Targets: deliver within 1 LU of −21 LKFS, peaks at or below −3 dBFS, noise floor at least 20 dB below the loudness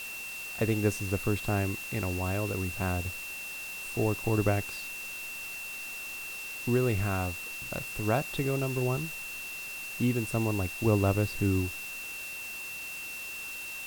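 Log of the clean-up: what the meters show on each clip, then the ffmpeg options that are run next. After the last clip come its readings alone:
interfering tone 2,700 Hz; level of the tone −38 dBFS; background noise floor −40 dBFS; target noise floor −52 dBFS; integrated loudness −31.5 LKFS; sample peak −11.5 dBFS; target loudness −21.0 LKFS
→ -af "bandreject=frequency=2700:width=30"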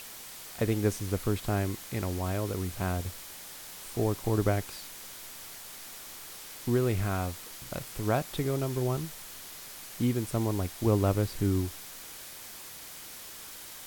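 interfering tone none found; background noise floor −45 dBFS; target noise floor −53 dBFS
→ -af "afftdn=noise_reduction=8:noise_floor=-45"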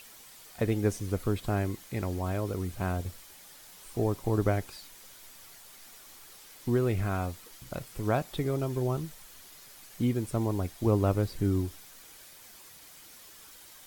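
background noise floor −52 dBFS; integrated loudness −31.0 LKFS; sample peak −12.0 dBFS; target loudness −21.0 LKFS
→ -af "volume=10dB,alimiter=limit=-3dB:level=0:latency=1"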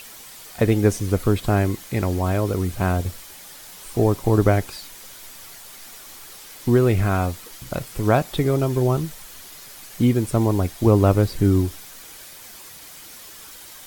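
integrated loudness −21.0 LKFS; sample peak −3.0 dBFS; background noise floor −42 dBFS

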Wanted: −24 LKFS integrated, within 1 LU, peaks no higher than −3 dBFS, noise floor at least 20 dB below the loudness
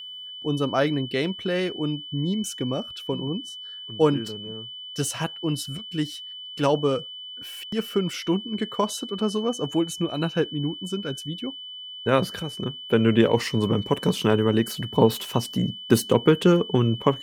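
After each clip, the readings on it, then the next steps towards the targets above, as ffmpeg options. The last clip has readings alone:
interfering tone 3,000 Hz; level of the tone −36 dBFS; integrated loudness −25.0 LKFS; sample peak −2.5 dBFS; target loudness −24.0 LKFS
→ -af "bandreject=frequency=3000:width=30"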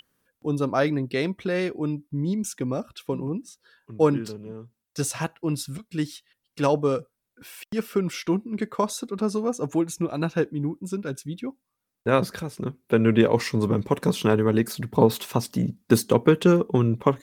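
interfering tone none found; integrated loudness −25.0 LKFS; sample peak −3.0 dBFS; target loudness −24.0 LKFS
→ -af "volume=1dB,alimiter=limit=-3dB:level=0:latency=1"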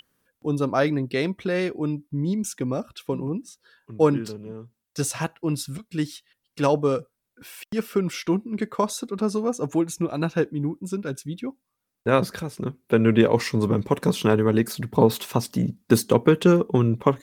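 integrated loudness −24.0 LKFS; sample peak −3.0 dBFS; background noise floor −81 dBFS

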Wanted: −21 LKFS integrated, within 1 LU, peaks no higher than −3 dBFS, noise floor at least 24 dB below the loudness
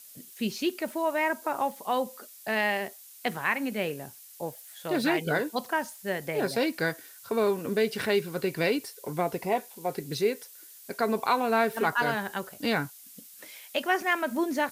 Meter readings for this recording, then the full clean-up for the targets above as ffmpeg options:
background noise floor −50 dBFS; target noise floor −53 dBFS; integrated loudness −29.0 LKFS; sample peak −12.0 dBFS; target loudness −21.0 LKFS
→ -af "afftdn=noise_reduction=6:noise_floor=-50"
-af "volume=8dB"

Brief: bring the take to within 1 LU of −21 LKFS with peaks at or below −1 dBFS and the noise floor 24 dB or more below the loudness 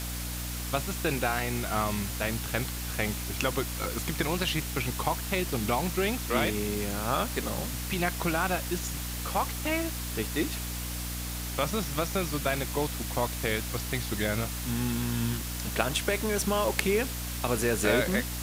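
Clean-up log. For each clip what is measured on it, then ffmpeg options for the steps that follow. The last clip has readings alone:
mains hum 60 Hz; hum harmonics up to 300 Hz; level of the hum −34 dBFS; background noise floor −35 dBFS; target noise floor −54 dBFS; integrated loudness −29.5 LKFS; sample peak −5.5 dBFS; target loudness −21.0 LKFS
→ -af "bandreject=frequency=60:width_type=h:width=6,bandreject=frequency=120:width_type=h:width=6,bandreject=frequency=180:width_type=h:width=6,bandreject=frequency=240:width_type=h:width=6,bandreject=frequency=300:width_type=h:width=6"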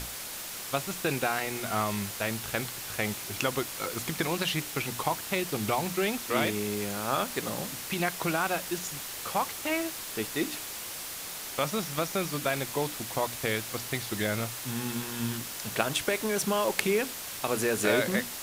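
mains hum none found; background noise floor −39 dBFS; target noise floor −55 dBFS
→ -af "afftdn=noise_reduction=16:noise_floor=-39"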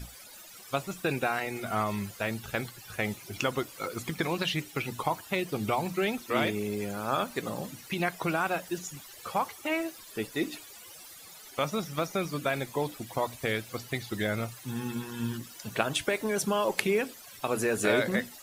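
background noise floor −49 dBFS; target noise floor −56 dBFS
→ -af "afftdn=noise_reduction=7:noise_floor=-49"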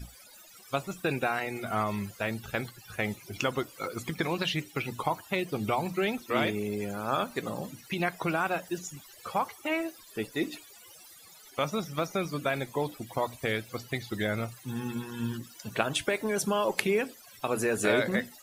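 background noise floor −53 dBFS; target noise floor −56 dBFS
→ -af "afftdn=noise_reduction=6:noise_floor=-53"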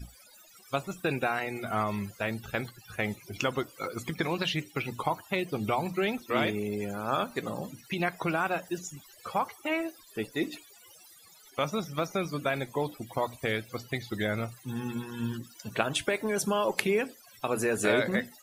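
background noise floor −56 dBFS; integrated loudness −31.5 LKFS; sample peak −7.0 dBFS; target loudness −21.0 LKFS
→ -af "volume=10.5dB,alimiter=limit=-1dB:level=0:latency=1"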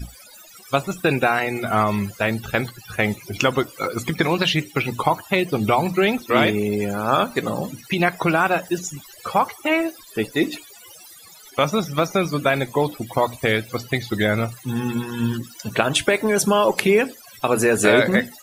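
integrated loudness −21.0 LKFS; sample peak −1.0 dBFS; background noise floor −45 dBFS

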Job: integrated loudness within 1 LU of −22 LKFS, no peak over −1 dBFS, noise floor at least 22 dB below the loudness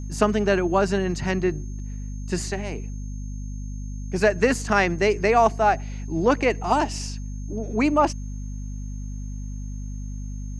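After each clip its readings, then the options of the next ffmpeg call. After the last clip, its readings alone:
mains hum 50 Hz; hum harmonics up to 250 Hz; level of the hum −29 dBFS; interfering tone 6,400 Hz; level of the tone −50 dBFS; integrated loudness −23.0 LKFS; sample peak −4.0 dBFS; target loudness −22.0 LKFS
→ -af "bandreject=frequency=50:width_type=h:width=6,bandreject=frequency=100:width_type=h:width=6,bandreject=frequency=150:width_type=h:width=6,bandreject=frequency=200:width_type=h:width=6,bandreject=frequency=250:width_type=h:width=6"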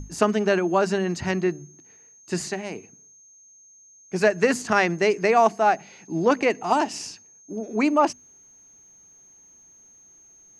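mains hum none found; interfering tone 6,400 Hz; level of the tone −50 dBFS
→ -af "bandreject=frequency=6400:width=30"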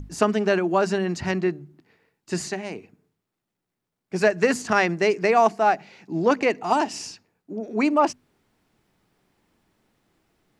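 interfering tone none found; integrated loudness −23.0 LKFS; sample peak −5.0 dBFS; target loudness −22.0 LKFS
→ -af "volume=1dB"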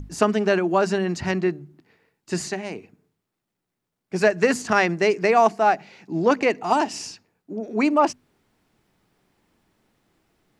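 integrated loudness −22.0 LKFS; sample peak −4.0 dBFS; background noise floor −82 dBFS

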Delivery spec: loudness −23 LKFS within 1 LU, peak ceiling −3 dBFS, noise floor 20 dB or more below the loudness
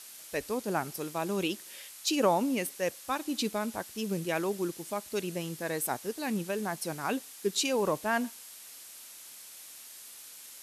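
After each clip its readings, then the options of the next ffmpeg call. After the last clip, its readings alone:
background noise floor −49 dBFS; target noise floor −52 dBFS; integrated loudness −32.0 LKFS; sample peak −13.0 dBFS; target loudness −23.0 LKFS
→ -af "afftdn=noise_reduction=6:noise_floor=-49"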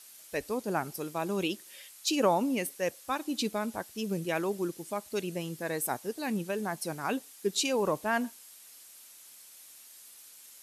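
background noise floor −53 dBFS; integrated loudness −32.5 LKFS; sample peak −13.0 dBFS; target loudness −23.0 LKFS
→ -af "volume=9.5dB"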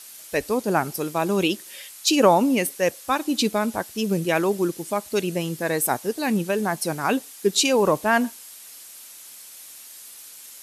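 integrated loudness −23.0 LKFS; sample peak −3.5 dBFS; background noise floor −43 dBFS

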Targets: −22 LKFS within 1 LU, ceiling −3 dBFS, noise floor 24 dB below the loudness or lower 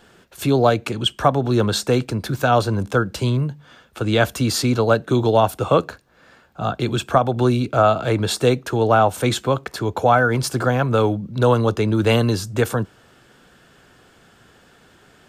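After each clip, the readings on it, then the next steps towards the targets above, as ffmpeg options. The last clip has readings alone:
integrated loudness −19.5 LKFS; sample peak −3.0 dBFS; target loudness −22.0 LKFS
→ -af "volume=-2.5dB"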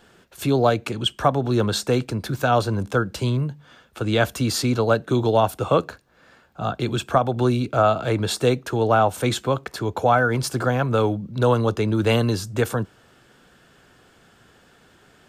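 integrated loudness −22.0 LKFS; sample peak −5.5 dBFS; background noise floor −56 dBFS

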